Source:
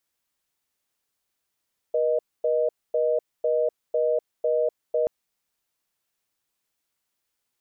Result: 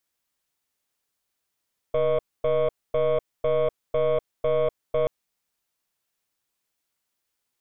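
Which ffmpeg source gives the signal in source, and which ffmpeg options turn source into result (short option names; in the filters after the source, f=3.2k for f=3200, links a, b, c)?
-f lavfi -i "aevalsrc='0.075*(sin(2*PI*480*t)+sin(2*PI*620*t))*clip(min(mod(t,0.5),0.25-mod(t,0.5))/0.005,0,1)':d=3.13:s=44100"
-af "aeval=exprs='0.158*(cos(1*acos(clip(val(0)/0.158,-1,1)))-cos(1*PI/2))+0.0316*(cos(2*acos(clip(val(0)/0.158,-1,1)))-cos(2*PI/2))+0.00178*(cos(3*acos(clip(val(0)/0.158,-1,1)))-cos(3*PI/2))+0.0112*(cos(6*acos(clip(val(0)/0.158,-1,1)))-cos(6*PI/2))':c=same"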